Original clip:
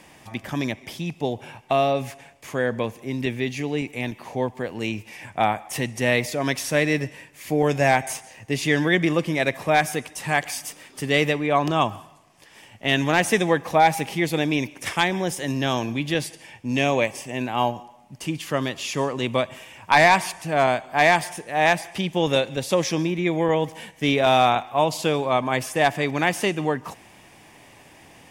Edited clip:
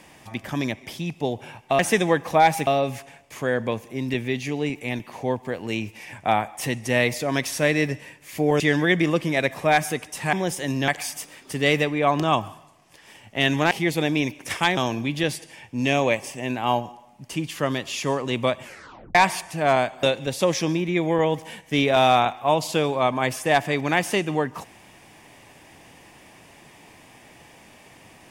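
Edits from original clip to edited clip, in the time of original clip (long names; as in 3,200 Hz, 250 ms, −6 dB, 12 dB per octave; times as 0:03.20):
0:07.72–0:08.63: remove
0:13.19–0:14.07: move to 0:01.79
0:15.13–0:15.68: move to 0:10.36
0:19.54: tape stop 0.52 s
0:20.94–0:22.33: remove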